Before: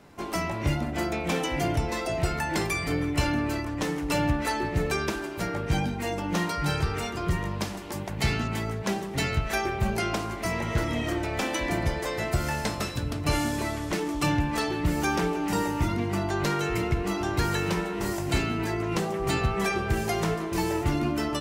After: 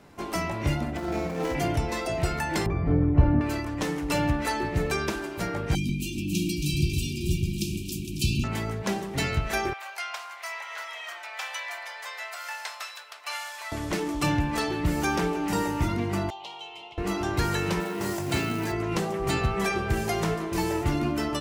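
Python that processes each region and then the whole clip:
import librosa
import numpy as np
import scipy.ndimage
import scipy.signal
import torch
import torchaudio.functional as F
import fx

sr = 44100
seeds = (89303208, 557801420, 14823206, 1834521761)

y = fx.chain(x, sr, fx.median_filter(points=15),
    fx.over_compress(threshold_db=-30.0, ratio=-0.5),
    fx.room_flutter(wall_m=8.9, rt60_s=0.41), at=(0.97, 1.55))
y = fx.chain(y, sr, fx.lowpass(hz=1000.0, slope=12),
    fx.low_shelf(hz=220.0, db=10.5), at=(2.66, 3.41))
y = fx.chain(y, sr, fx.brickwall_bandstop(low_hz=390.0, high_hz=2300.0),
    fx.high_shelf(hz=7600.0, db=7.0),
    fx.echo_alternate(ms=137, hz=2500.0, feedback_pct=68, wet_db=-2.5), at=(5.75, 8.44))
y = fx.chain(y, sr, fx.bessel_highpass(hz=1200.0, order=6),
    fx.peak_eq(hz=9800.0, db=-6.5, octaves=1.8), at=(9.73, 13.72))
y = fx.chain(y, sr, fx.double_bandpass(hz=1600.0, octaves=1.9),
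    fx.tilt_shelf(db=-4.0, hz=1100.0), at=(16.3, 16.98))
y = fx.chain(y, sr, fx.highpass(hz=84.0, slope=24),
    fx.quant_float(bits=2), at=(17.8, 18.72))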